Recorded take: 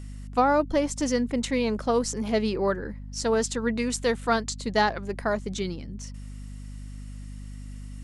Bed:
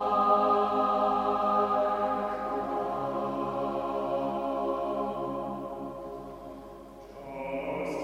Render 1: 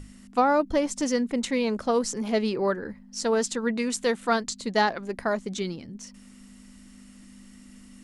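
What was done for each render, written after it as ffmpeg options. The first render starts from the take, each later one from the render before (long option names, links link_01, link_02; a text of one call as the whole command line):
ffmpeg -i in.wav -af "bandreject=frequency=50:width_type=h:width=6,bandreject=frequency=100:width_type=h:width=6,bandreject=frequency=150:width_type=h:width=6" out.wav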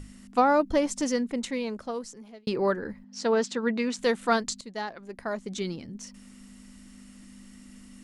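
ffmpeg -i in.wav -filter_complex "[0:a]asettb=1/sr,asplit=3[link_01][link_02][link_03];[link_01]atrim=end=3.044[link_04];[link_02]atrim=start=3.04:end=3.99,asetpts=PTS-STARTPTS,afade=type=in:duration=0.004:curve=qsin,afade=type=out:start_time=0.946:duration=0.004:curve=qsin,highpass=140,lowpass=4700[link_05];[link_03]atrim=start=3.986[link_06];[link_04][link_05]acrossfade=duration=0.004:curve1=hsin:curve2=qsin[link_07];[link_07][link_06]acrossfade=duration=0.004:curve1=qsin:curve2=hsin,asplit=3[link_08][link_09][link_10];[link_08]atrim=end=2.47,asetpts=PTS-STARTPTS,afade=type=out:start_time=0.83:duration=1.64[link_11];[link_09]atrim=start=2.47:end=4.61,asetpts=PTS-STARTPTS,afade=type=in:duration=0.004:curve=hsin,afade=type=out:start_time=2.136:duration=0.004:curve=hsin:silence=0.237137[link_12];[link_10]atrim=start=4.61,asetpts=PTS-STARTPTS,afade=type=in:duration=1.14:curve=qua:silence=0.237137[link_13];[link_11][link_12][link_13]concat=n=3:v=0:a=1" out.wav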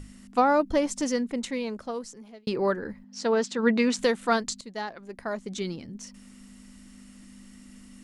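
ffmpeg -i in.wav -filter_complex "[0:a]asplit=3[link_01][link_02][link_03];[link_01]afade=type=out:start_time=3.58:duration=0.02[link_04];[link_02]acontrast=25,afade=type=in:start_time=3.58:duration=0.02,afade=type=out:start_time=4.05:duration=0.02[link_05];[link_03]afade=type=in:start_time=4.05:duration=0.02[link_06];[link_04][link_05][link_06]amix=inputs=3:normalize=0" out.wav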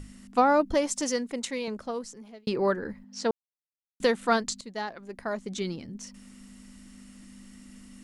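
ffmpeg -i in.wav -filter_complex "[0:a]asettb=1/sr,asplit=3[link_01][link_02][link_03];[link_01]atrim=end=0.744[link_04];[link_02]atrim=start=0.74:end=1.68,asetpts=PTS-STARTPTS,afade=type=in:duration=0.004:curve=qsin,afade=type=out:start_time=0.936:duration=0.004:curve=qsin,bass=frequency=250:gain=-9,treble=frequency=4000:gain=4[link_05];[link_03]atrim=start=1.676[link_06];[link_04][link_05]acrossfade=duration=0.004:curve1=hsin:curve2=qsin[link_07];[link_07][link_06]acrossfade=duration=0.004:curve1=qsin:curve2=hsin,asplit=3[link_08][link_09][link_10];[link_08]atrim=end=3.31,asetpts=PTS-STARTPTS,afade=type=out:start_time=3.306:duration=0.004:curve=hsin[link_11];[link_09]atrim=start=3.31:end=4,asetpts=PTS-STARTPTS,volume=0[link_12];[link_10]atrim=start=4,asetpts=PTS-STARTPTS,afade=type=in:duration=0.004:curve=hsin[link_13];[link_11][link_12][link_13]concat=n=3:v=0:a=1" out.wav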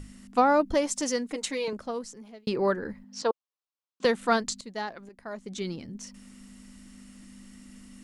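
ffmpeg -i in.wav -filter_complex "[0:a]asettb=1/sr,asplit=3[link_01][link_02][link_03];[link_01]atrim=end=1.304[link_04];[link_02]atrim=start=1.3:end=1.73,asetpts=PTS-STARTPTS,afade=type=in:duration=0.004:curve=qsin,afade=type=out:start_time=0.426:duration=0.004:curve=qsin,aecho=1:1:6.5:0.8,atrim=end_sample=18963[link_05];[link_03]atrim=start=1.726[link_06];[link_04][link_05]acrossfade=duration=0.004:curve1=hsin:curve2=qsin[link_07];[link_07][link_06]acrossfade=duration=0.004:curve1=qsin:curve2=hsin,asettb=1/sr,asplit=3[link_08][link_09][link_10];[link_08]atrim=end=3.224[link_11];[link_09]atrim=start=3.22:end=4.05,asetpts=PTS-STARTPTS,afade=type=in:duration=0.004:curve=qsin,afade=type=out:start_time=0.826:duration=0.004:curve=qsin,highpass=340,equalizer=frequency=500:width_type=q:width=4:gain=3,equalizer=frequency=1100:width_type=q:width=4:gain=9,equalizer=frequency=2000:width_type=q:width=4:gain=-8,lowpass=frequency=6100:width=0.5412,lowpass=frequency=6100:width=1.3066[link_12];[link_10]atrim=start=4.046[link_13];[link_11][link_12]acrossfade=duration=0.004:curve1=hsin:curve2=qsin[link_14];[link_14][link_13]acrossfade=duration=0.004:curve1=qsin:curve2=hsin,asplit=2[link_15][link_16];[link_15]atrim=end=5.09,asetpts=PTS-STARTPTS,afade=type=out:start_time=5.086:duration=0.004:curve=hsin:silence=0.237137[link_17];[link_16]atrim=start=5.09,asetpts=PTS-STARTPTS,afade=type=in:duration=0.69:silence=0.237137[link_18];[link_17][link_18]concat=n=2:v=0:a=1" out.wav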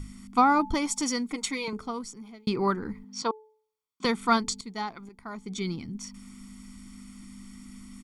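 ffmpeg -i in.wav -af "aecho=1:1:0.9:0.74,bandreject=frequency=433.9:width_type=h:width=4,bandreject=frequency=867.8:width_type=h:width=4" out.wav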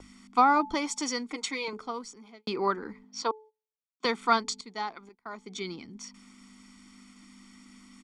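ffmpeg -i in.wav -filter_complex "[0:a]agate=range=-18dB:threshold=-47dB:ratio=16:detection=peak,acrossover=split=270 7700:gain=0.141 1 0.0891[link_01][link_02][link_03];[link_01][link_02][link_03]amix=inputs=3:normalize=0" out.wav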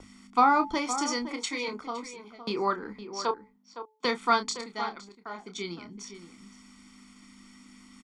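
ffmpeg -i in.wav -filter_complex "[0:a]asplit=2[link_01][link_02];[link_02]adelay=29,volume=-9dB[link_03];[link_01][link_03]amix=inputs=2:normalize=0,asplit=2[link_04][link_05];[link_05]adelay=513.1,volume=-11dB,highshelf=frequency=4000:gain=-11.5[link_06];[link_04][link_06]amix=inputs=2:normalize=0" out.wav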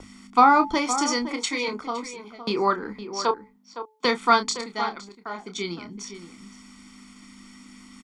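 ffmpeg -i in.wav -af "volume=5.5dB" out.wav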